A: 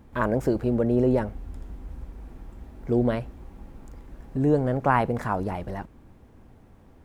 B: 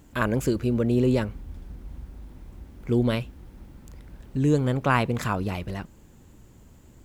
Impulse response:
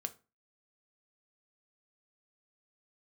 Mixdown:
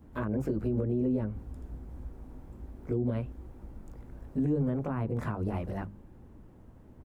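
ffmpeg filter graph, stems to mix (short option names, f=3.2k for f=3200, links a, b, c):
-filter_complex "[0:a]equalizer=f=1.8k:w=0.52:g=-10,volume=-4.5dB[a];[1:a]lowpass=1.4k,adelay=19,volume=-1.5dB[b];[a][b]amix=inputs=2:normalize=0,acrossover=split=350[c][d];[d]acompressor=threshold=-33dB:ratio=6[e];[c][e]amix=inputs=2:normalize=0,bandreject=f=50:t=h:w=6,bandreject=f=100:t=h:w=6,bandreject=f=150:t=h:w=6,bandreject=f=200:t=h:w=6,alimiter=limit=-21.5dB:level=0:latency=1:release=146"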